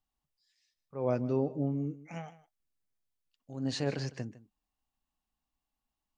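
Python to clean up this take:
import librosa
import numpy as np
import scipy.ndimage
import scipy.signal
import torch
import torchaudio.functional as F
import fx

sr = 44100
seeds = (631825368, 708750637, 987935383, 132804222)

y = fx.fix_echo_inverse(x, sr, delay_ms=155, level_db=-17.5)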